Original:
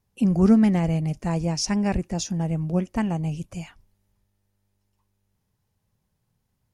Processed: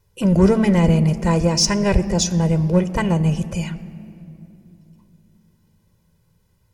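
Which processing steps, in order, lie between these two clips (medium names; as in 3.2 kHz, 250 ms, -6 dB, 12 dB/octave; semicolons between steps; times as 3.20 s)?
peaking EQ 860 Hz -2 dB 0.38 oct; in parallel at -3.5 dB: hard clipper -22 dBFS, distortion -7 dB; on the sum: reverberation RT60 2.8 s, pre-delay 12 ms, DRR 13.5 dB; trim +3.5 dB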